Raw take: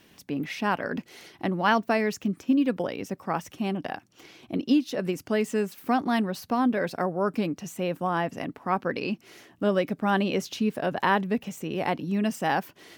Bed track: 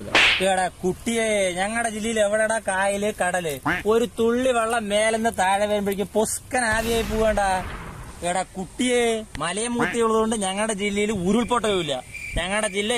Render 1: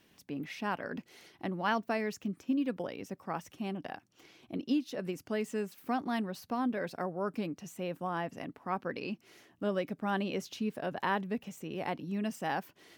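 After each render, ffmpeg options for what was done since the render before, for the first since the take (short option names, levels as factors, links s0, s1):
-af "volume=0.376"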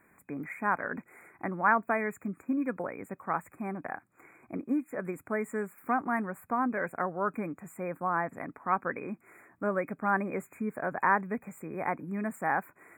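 -af "equalizer=f=1300:t=o:w=1.4:g=9.5,afftfilt=real='re*(1-between(b*sr/4096,2500,6900))':imag='im*(1-between(b*sr/4096,2500,6900))':win_size=4096:overlap=0.75"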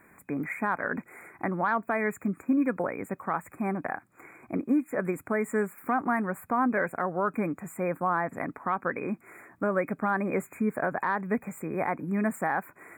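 -af "acontrast=57,alimiter=limit=0.141:level=0:latency=1:release=155"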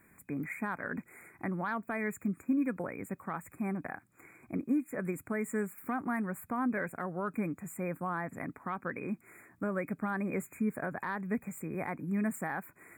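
-af "equalizer=f=800:w=0.4:g=-10"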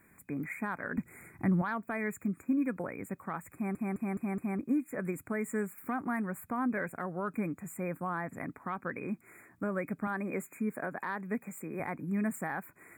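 -filter_complex "[0:a]asettb=1/sr,asplit=3[s0][s1][s2];[s0]atrim=end=0.974[s3];[s1]atrim=start=0.97:end=1.62,asetpts=PTS-STARTPTS,afade=t=in:d=0.004:c=qsin,afade=t=out:st=0.646:d=0.004:c=qsin,bass=f=250:g=12,treble=f=4000:g=3[s4];[s2]atrim=start=1.616[s5];[s3][s4]acrossfade=d=0.004:c1=hsin:c2=qsin[s6];[s6][s5]acrossfade=d=0.004:c1=qsin:c2=hsin,asettb=1/sr,asplit=3[s7][s8][s9];[s7]atrim=end=10.074[s10];[s8]atrim=start=10.07:end=11.8,asetpts=PTS-STARTPTS,afade=t=in:d=0.004:c=qsin,afade=t=out:st=1.726:d=0.004:c=qsin,highpass=190[s11];[s9]atrim=start=11.796[s12];[s10][s11]acrossfade=d=0.004:c1=hsin:c2=qsin[s13];[s13][s12]acrossfade=d=0.004:c1=qsin:c2=hsin,asplit=6[s14][s15][s16][s17][s18][s19];[s14]atrim=end=3.752[s20];[s15]atrim=start=3.538:end=3.752[s21];[s16]atrim=start=3.538:end=3.752[s22];[s17]atrim=start=3.538:end=3.752[s23];[s18]atrim=start=3.538:end=3.752[s24];[s19]atrim=start=4.588[s25];[s20][s21]acrossfade=d=0.004:c1=hsin:c2=hsin[s26];[s26][s22]acrossfade=d=0.004:c1=hsin:c2=hsin[s27];[s27][s23]acrossfade=d=0.004:c1=hsin:c2=hsin[s28];[s28][s24]acrossfade=d=0.004:c1=hsin:c2=hsin[s29];[s29][s25]acrossfade=d=0.004:c1=hsin:c2=hsin"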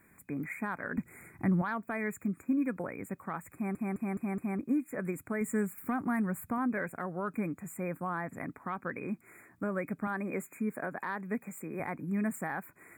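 -filter_complex "[0:a]asettb=1/sr,asplit=3[s0][s1][s2];[s0]atrim=end=5.414[s3];[s1]atrim=start=5.41:end=6.58,asetpts=PTS-STARTPTS,afade=t=in:d=0.004:c=qsin,afade=t=out:st=1.166:d=0.004:c=qsin,bass=f=250:g=6,treble=f=4000:g=3[s4];[s2]atrim=start=6.576[s5];[s3][s4]acrossfade=d=0.004:c1=hsin:c2=qsin[s6];[s6][s5]acrossfade=d=0.004:c1=qsin:c2=hsin"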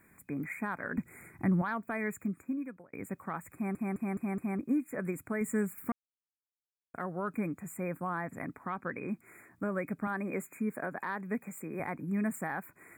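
-filter_complex "[0:a]asettb=1/sr,asplit=3[s0][s1][s2];[s0]atrim=end=8.664[s3];[s1]atrim=start=8.66:end=9.1,asetpts=PTS-STARTPTS,afade=t=in:d=0.004:c=qsin,afade=t=out:st=0.436:d=0.004:c=qsin,highshelf=f=11000:g=-7[s4];[s2]atrim=start=9.096[s5];[s3][s4]acrossfade=d=0.004:c1=hsin:c2=qsin[s6];[s6][s5]acrossfade=d=0.004:c1=qsin:c2=hsin,asplit=4[s7][s8][s9][s10];[s7]atrim=end=2.93,asetpts=PTS-STARTPTS,afade=t=out:st=2.17:d=0.76[s11];[s8]atrim=start=2.93:end=5.92,asetpts=PTS-STARTPTS,afade=t=in:d=0.004:c=hsin,afade=t=out:st=2.986:d=0.004:c=hsin[s12];[s9]atrim=start=5.92:end=6.94,asetpts=PTS-STARTPTS,volume=0[s13];[s10]atrim=start=6.94,asetpts=PTS-STARTPTS,afade=t=in:d=0.004:c=hsin[s14];[s11][s12][s13][s14]concat=n=4:v=0:a=1"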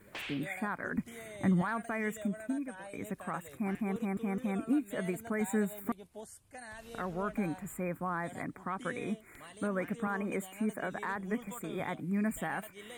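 -filter_complex "[1:a]volume=0.0501[s0];[0:a][s0]amix=inputs=2:normalize=0"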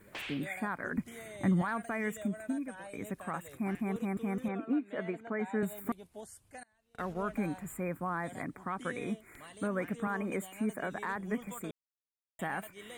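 -filter_complex "[0:a]asettb=1/sr,asplit=3[s0][s1][s2];[s0]atrim=end=4.484[s3];[s1]atrim=start=4.48:end=5.63,asetpts=PTS-STARTPTS,afade=t=in:d=0.004:c=qsin,afade=t=out:st=1.146:d=0.004:c=qsin,highpass=220,lowpass=2700[s4];[s2]atrim=start=5.626[s5];[s3][s4]acrossfade=d=0.004:c1=hsin:c2=qsin[s6];[s6][s5]acrossfade=d=0.004:c1=qsin:c2=hsin,asettb=1/sr,asplit=3[s7][s8][s9];[s7]atrim=end=6.634[s10];[s8]atrim=start=6.63:end=7.25,asetpts=PTS-STARTPTS,afade=t=in:d=0.004:c=qsin,afade=t=out:st=0.616:d=0.004:c=qsin,agate=range=0.0447:threshold=0.00794:ratio=16:release=100:detection=peak[s11];[s9]atrim=start=7.246[s12];[s10][s11]acrossfade=d=0.004:c1=hsin:c2=qsin[s13];[s13][s12]acrossfade=d=0.004:c1=qsin:c2=hsin,asplit=3[s14][s15][s16];[s14]atrim=end=11.71,asetpts=PTS-STARTPTS,afade=t=out:st=11.706:d=0.004:c=hsin[s17];[s15]atrim=start=11.71:end=12.39,asetpts=PTS-STARTPTS,volume=0[s18];[s16]atrim=start=12.39,asetpts=PTS-STARTPTS,afade=t=in:d=0.004:c=hsin[s19];[s17][s18][s19]concat=n=3:v=0:a=1"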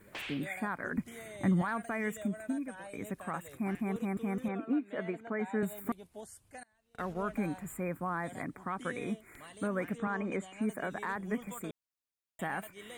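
-filter_complex "[0:a]asettb=1/sr,asplit=3[s0][s1][s2];[s0]atrim=end=9.984[s3];[s1]atrim=start=9.98:end=10.62,asetpts=PTS-STARTPTS,afade=t=in:d=0.004:c=qsin,afade=t=out:st=0.636:d=0.004:c=qsin,lowpass=f=7100:w=0.5412,lowpass=f=7100:w=1.3066[s4];[s2]atrim=start=10.616[s5];[s3][s4]acrossfade=d=0.004:c1=hsin:c2=qsin[s6];[s6][s5]acrossfade=d=0.004:c1=qsin:c2=hsin"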